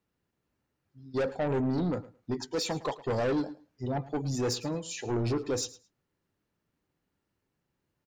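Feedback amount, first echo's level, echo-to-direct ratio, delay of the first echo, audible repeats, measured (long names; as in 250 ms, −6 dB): 16%, −18.0 dB, −18.0 dB, 109 ms, 2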